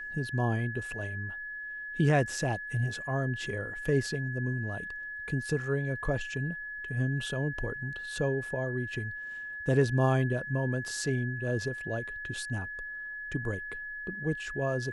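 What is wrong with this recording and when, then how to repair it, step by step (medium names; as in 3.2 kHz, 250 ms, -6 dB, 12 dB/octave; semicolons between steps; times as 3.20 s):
whine 1.7 kHz -37 dBFS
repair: band-stop 1.7 kHz, Q 30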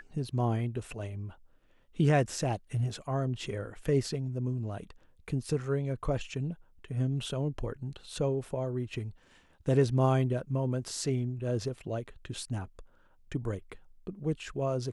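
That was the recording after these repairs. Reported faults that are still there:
nothing left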